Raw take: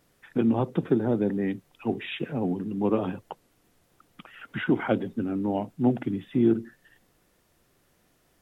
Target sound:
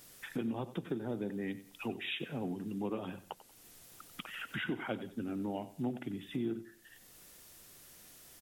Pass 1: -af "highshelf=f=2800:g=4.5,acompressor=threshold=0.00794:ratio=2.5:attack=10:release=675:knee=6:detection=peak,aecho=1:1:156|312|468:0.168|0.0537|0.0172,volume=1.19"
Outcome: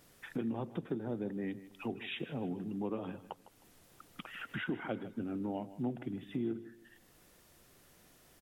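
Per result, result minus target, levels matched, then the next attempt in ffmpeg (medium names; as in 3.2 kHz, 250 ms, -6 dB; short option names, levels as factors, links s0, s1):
echo 63 ms late; 4 kHz band -4.0 dB
-af "highshelf=f=2800:g=4.5,acompressor=threshold=0.00794:ratio=2.5:attack=10:release=675:knee=6:detection=peak,aecho=1:1:93|186|279:0.168|0.0537|0.0172,volume=1.19"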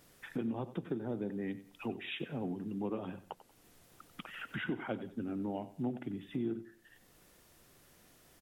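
4 kHz band -4.0 dB
-af "highshelf=f=2800:g=15,acompressor=threshold=0.00794:ratio=2.5:attack=10:release=675:knee=6:detection=peak,aecho=1:1:93|186|279:0.168|0.0537|0.0172,volume=1.19"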